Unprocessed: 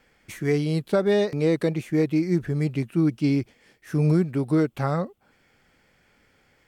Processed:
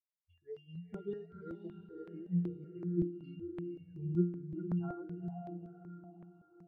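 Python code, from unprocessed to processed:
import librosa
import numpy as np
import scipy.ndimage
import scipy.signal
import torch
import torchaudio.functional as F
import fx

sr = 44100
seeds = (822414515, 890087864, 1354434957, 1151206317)

y = fx.bin_expand(x, sr, power=3.0)
y = fx.air_absorb(y, sr, metres=82.0)
y = fx.octave_resonator(y, sr, note='F', decay_s=0.38)
y = fx.echo_diffused(y, sr, ms=485, feedback_pct=48, wet_db=-7.0)
y = fx.phaser_held(y, sr, hz=5.3, low_hz=450.0, high_hz=5600.0)
y = y * 10.0 ** (7.5 / 20.0)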